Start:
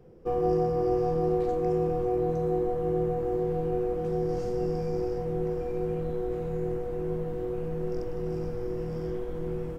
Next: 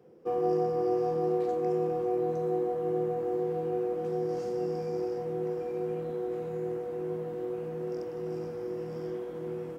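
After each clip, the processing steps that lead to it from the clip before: HPF 210 Hz 12 dB/oct; gain -1.5 dB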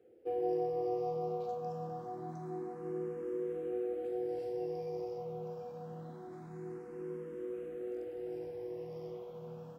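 endless phaser +0.25 Hz; gain -5 dB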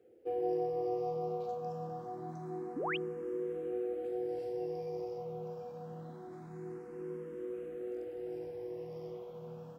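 painted sound rise, 2.76–2.97, 230–3400 Hz -36 dBFS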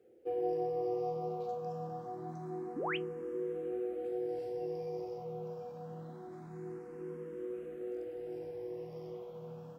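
flange 0.78 Hz, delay 4.9 ms, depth 2.2 ms, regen -74%; gain +4 dB

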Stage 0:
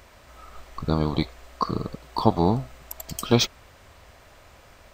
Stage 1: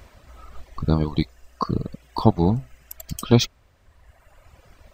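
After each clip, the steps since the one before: reverb removal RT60 1.6 s; low shelf 290 Hz +8.5 dB; gain -1 dB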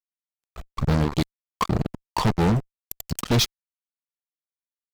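fuzz box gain 24 dB, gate -32 dBFS; gain -2.5 dB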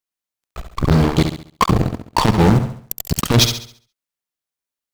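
flutter echo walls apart 11.7 m, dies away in 0.49 s; in parallel at -11.5 dB: companded quantiser 4-bit; on the sum: core saturation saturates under 150 Hz; gain +7 dB

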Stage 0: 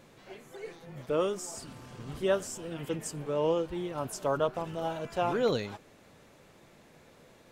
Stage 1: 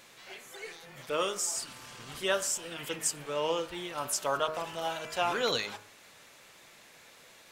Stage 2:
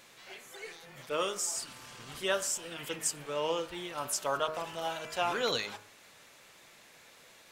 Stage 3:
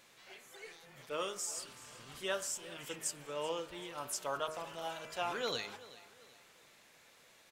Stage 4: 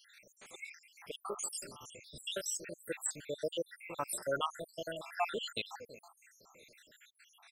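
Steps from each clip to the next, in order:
tilt shelf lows -9.5 dB, about 740 Hz; de-hum 52.36 Hz, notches 33
attack slew limiter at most 480 dB/s; gain -1.5 dB
feedback echo 0.382 s, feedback 39%, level -18 dB; gain -6 dB
random spectral dropouts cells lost 79%; gain +7 dB

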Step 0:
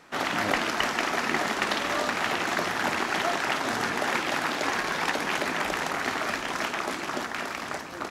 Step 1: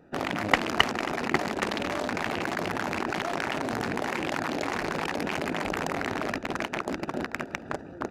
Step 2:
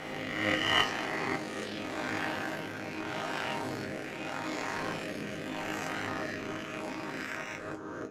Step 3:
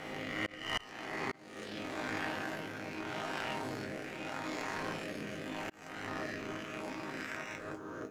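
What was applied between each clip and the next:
Wiener smoothing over 41 samples; level quantiser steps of 13 dB; bell 85 Hz +2.5 dB 1.5 oct; gain +8.5 dB
spectral swells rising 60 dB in 1.66 s; rotary speaker horn 0.8 Hz; resonator bank G#2 major, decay 0.22 s; gain +3.5 dB
tracing distortion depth 0.046 ms; requantised 12-bit, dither none; auto swell 0.47 s; gain -3.5 dB

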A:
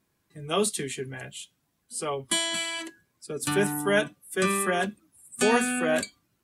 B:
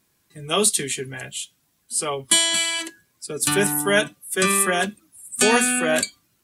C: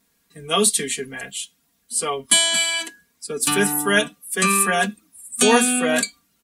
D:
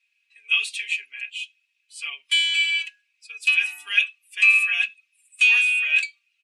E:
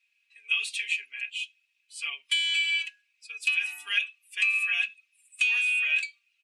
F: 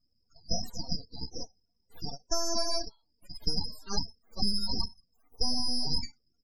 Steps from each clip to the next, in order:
high shelf 2400 Hz +8.5 dB; gain +3 dB
comb 4.3 ms, depth 75%; gain -1 dB
in parallel at -7 dB: hard clip -12 dBFS, distortion -15 dB; on the sum: ladder band-pass 2600 Hz, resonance 90%; gain +1.5 dB
compressor 6:1, threshold -21 dBFS, peak gain reduction 9.5 dB; gain -1.5 dB
full-wave rectifier; loudest bins only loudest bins 32

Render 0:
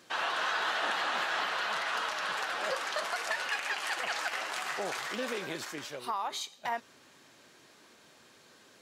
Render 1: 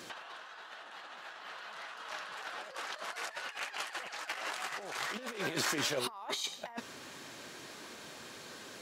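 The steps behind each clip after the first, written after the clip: negative-ratio compressor -41 dBFS, ratio -0.5; gain +2 dB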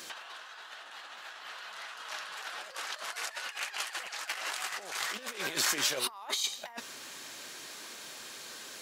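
tilt +2.5 dB/oct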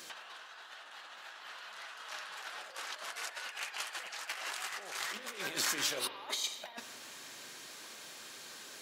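spring tank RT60 1.7 s, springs 42 ms, chirp 60 ms, DRR 9 dB; gain -4 dB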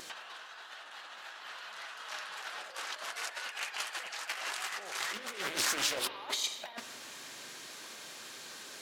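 Doppler distortion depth 0.61 ms; gain +2.5 dB

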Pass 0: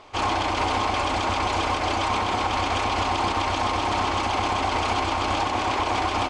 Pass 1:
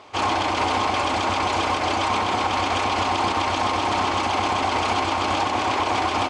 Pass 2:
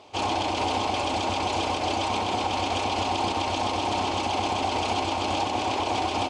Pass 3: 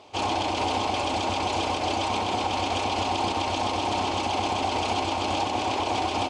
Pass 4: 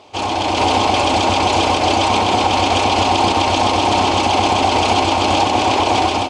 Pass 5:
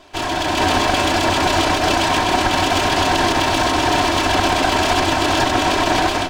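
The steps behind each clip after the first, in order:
HPF 93 Hz; gain +2 dB
band shelf 1500 Hz -8.5 dB 1.2 oct; gain -2.5 dB
nothing audible
AGC gain up to 6 dB; gain +5.5 dB
minimum comb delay 3 ms

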